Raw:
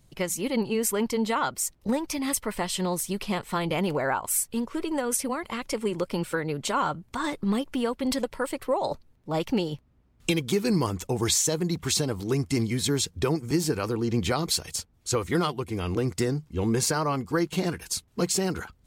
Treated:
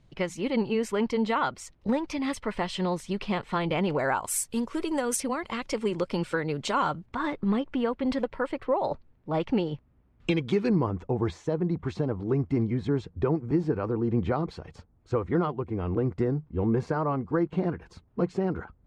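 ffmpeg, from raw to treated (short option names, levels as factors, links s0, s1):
-af "asetnsamples=n=441:p=0,asendcmd='3.99 lowpass f 9300;5.2 lowpass f 5500;7.06 lowpass f 2500;10.69 lowpass f 1200',lowpass=3500"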